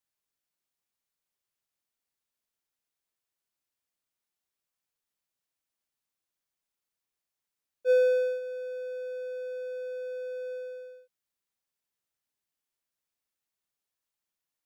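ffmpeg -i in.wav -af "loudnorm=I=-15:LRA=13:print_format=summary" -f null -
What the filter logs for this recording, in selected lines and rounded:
Input Integrated:    -31.1 LUFS
Input True Peak:     -15.0 dBTP
Input LRA:             8.1 LU
Input Threshold:     -41.7 LUFS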